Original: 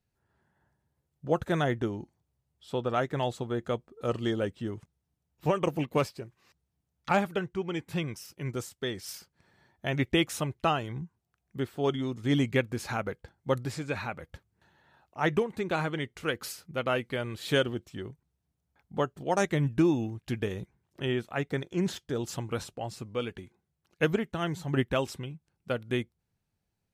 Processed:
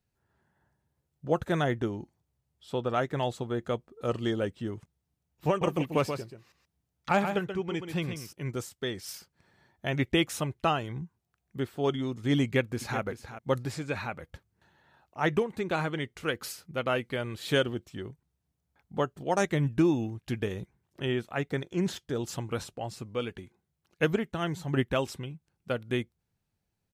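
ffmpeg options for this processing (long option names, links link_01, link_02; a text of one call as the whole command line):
ffmpeg -i in.wav -filter_complex "[0:a]asettb=1/sr,asplit=3[link_01][link_02][link_03];[link_01]atrim=end=5.484[link_04];[link_02]atrim=start=5.48:end=8.33,asetpts=PTS-STARTPTS,afade=type=in:duration=0.004:curve=qsin,afade=type=out:start_time=2.846:duration=0.004:curve=qsin,aecho=1:1:132:0.422,atrim=end_sample=125685[link_05];[link_03]atrim=start=8.326[link_06];[link_04][link_05]acrossfade=duration=0.004:curve1=hsin:curve2=qsin[link_07];[link_07][link_06]acrossfade=duration=0.004:curve1=qsin:curve2=hsin,asplit=2[link_08][link_09];[link_09]afade=type=in:start_time=12.43:duration=0.01,afade=type=out:start_time=13:duration=0.01,aecho=0:1:380|760:0.251189|0.0251189[link_10];[link_08][link_10]amix=inputs=2:normalize=0" out.wav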